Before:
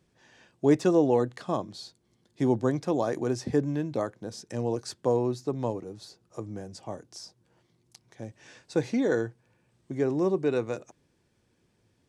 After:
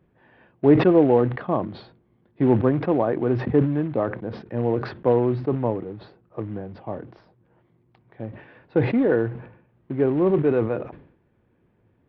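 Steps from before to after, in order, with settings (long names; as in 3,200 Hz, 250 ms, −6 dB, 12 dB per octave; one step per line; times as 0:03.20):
floating-point word with a short mantissa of 2 bits
Gaussian smoothing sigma 3.9 samples
level that may fall only so fast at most 91 dB per second
level +6 dB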